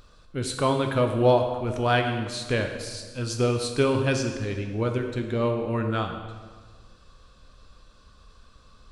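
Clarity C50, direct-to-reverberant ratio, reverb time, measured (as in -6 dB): 6.0 dB, 4.0 dB, 1.5 s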